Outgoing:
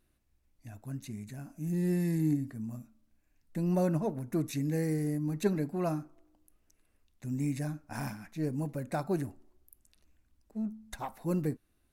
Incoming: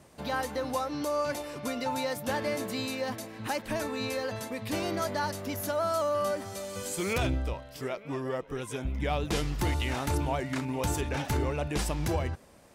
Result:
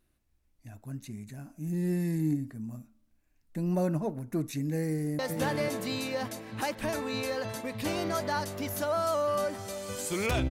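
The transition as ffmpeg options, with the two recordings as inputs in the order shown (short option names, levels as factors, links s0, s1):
-filter_complex "[0:a]apad=whole_dur=10.5,atrim=end=10.5,atrim=end=5.192[s0];[1:a]atrim=start=2.058:end=7.37[s1];[s0][s1]acrossfade=d=0.004:c1=hsin:c2=hsin,asplit=2[s2][s3];[s3]afade=t=in:st=4.8:d=0.01,afade=t=out:st=5.19:d=0.01,aecho=0:1:490|980|1470:0.630957|0.126191|0.0252383[s4];[s2][s4]amix=inputs=2:normalize=0"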